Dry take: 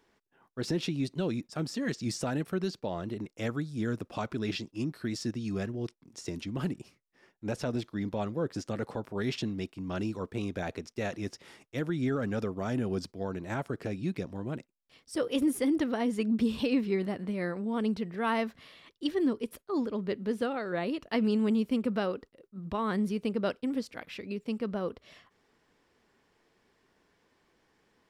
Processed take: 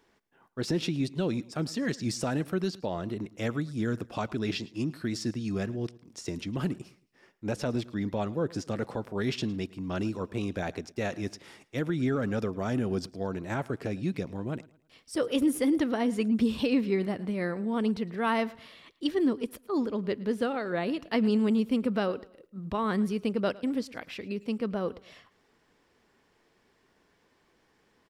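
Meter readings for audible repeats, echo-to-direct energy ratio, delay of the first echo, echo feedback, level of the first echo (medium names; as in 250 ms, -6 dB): 2, -20.5 dB, 109 ms, 34%, -21.0 dB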